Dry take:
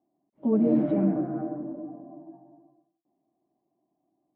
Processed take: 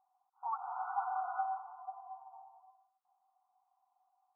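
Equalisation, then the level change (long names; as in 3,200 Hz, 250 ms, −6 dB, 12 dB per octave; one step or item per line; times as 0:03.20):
linear-phase brick-wall band-pass 720–1,500 Hz
+10.0 dB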